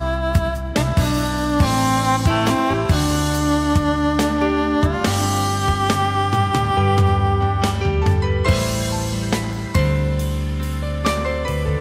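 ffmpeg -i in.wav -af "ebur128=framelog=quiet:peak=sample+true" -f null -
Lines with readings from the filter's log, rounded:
Integrated loudness:
  I:         -19.0 LUFS
  Threshold: -29.0 LUFS
Loudness range:
  LRA:         2.5 LU
  Threshold: -38.7 LUFS
  LRA low:   -20.6 LUFS
  LRA high:  -18.1 LUFS
Sample peak:
  Peak:       -5.4 dBFS
True peak:
  Peak:       -5.3 dBFS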